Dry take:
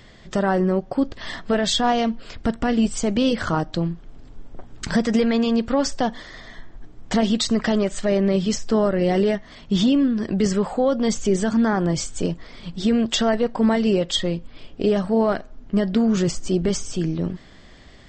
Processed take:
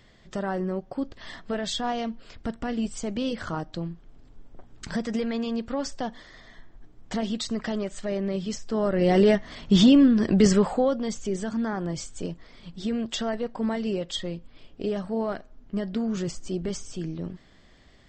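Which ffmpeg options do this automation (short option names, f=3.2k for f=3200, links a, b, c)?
-af "volume=2dB,afade=t=in:st=8.72:d=0.6:silence=0.281838,afade=t=out:st=10.51:d=0.54:silence=0.281838"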